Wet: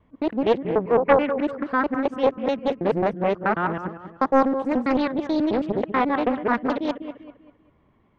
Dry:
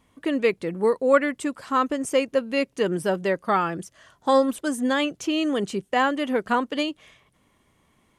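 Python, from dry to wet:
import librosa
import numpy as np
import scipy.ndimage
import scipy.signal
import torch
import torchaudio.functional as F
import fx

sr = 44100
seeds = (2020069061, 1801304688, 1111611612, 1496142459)

y = fx.local_reverse(x, sr, ms=108.0)
y = fx.spacing_loss(y, sr, db_at_10k=44)
y = fx.echo_wet_lowpass(y, sr, ms=196, feedback_pct=36, hz=2400.0, wet_db=-10)
y = fx.doppler_dist(y, sr, depth_ms=0.67)
y = y * 10.0 ** (4.0 / 20.0)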